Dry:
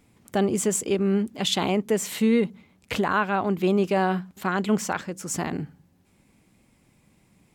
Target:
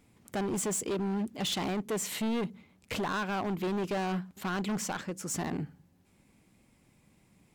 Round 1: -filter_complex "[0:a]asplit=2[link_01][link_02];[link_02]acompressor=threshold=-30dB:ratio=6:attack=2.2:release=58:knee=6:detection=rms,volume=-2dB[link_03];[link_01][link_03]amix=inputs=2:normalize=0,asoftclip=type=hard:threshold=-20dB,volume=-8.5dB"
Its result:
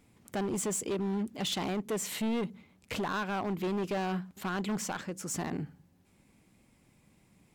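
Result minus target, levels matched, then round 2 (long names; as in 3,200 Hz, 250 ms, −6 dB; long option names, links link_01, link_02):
downward compressor: peak gain reduction +8.5 dB
-filter_complex "[0:a]asplit=2[link_01][link_02];[link_02]acompressor=threshold=-20dB:ratio=6:attack=2.2:release=58:knee=6:detection=rms,volume=-2dB[link_03];[link_01][link_03]amix=inputs=2:normalize=0,asoftclip=type=hard:threshold=-20dB,volume=-8.5dB"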